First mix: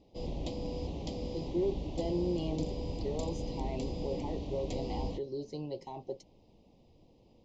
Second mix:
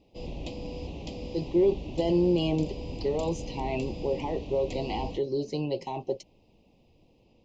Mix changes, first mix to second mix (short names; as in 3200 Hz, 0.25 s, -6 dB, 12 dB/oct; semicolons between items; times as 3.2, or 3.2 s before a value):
speech +9.0 dB; master: add bell 2600 Hz +9.5 dB 0.37 oct